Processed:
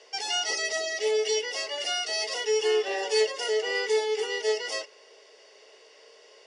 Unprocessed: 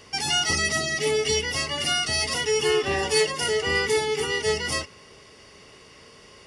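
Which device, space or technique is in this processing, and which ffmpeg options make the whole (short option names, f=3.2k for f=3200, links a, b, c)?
phone speaker on a table: -af "highpass=f=440:w=0.5412,highpass=f=440:w=1.3066,equalizer=f=440:t=q:w=4:g=6,equalizer=f=630:t=q:w=4:g=5,equalizer=f=1.2k:t=q:w=4:g=-9,equalizer=f=2.3k:t=q:w=4:g=-3,lowpass=f=7.5k:w=0.5412,lowpass=f=7.5k:w=1.3066,volume=-4dB"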